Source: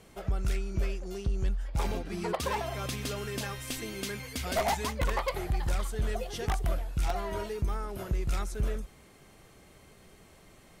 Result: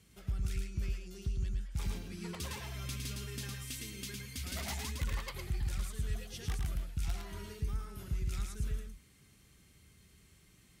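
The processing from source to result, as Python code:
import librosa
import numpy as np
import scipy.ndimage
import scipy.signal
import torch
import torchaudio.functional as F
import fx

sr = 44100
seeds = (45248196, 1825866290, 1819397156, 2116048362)

y = scipy.signal.sosfilt(scipy.signal.butter(2, 54.0, 'highpass', fs=sr, output='sos'), x)
y = fx.tone_stack(y, sr, knobs='6-0-2')
y = y + 10.0 ** (-4.0 / 20.0) * np.pad(y, (int(109 * sr / 1000.0), 0))[:len(y)]
y = y * 10.0 ** (9.5 / 20.0)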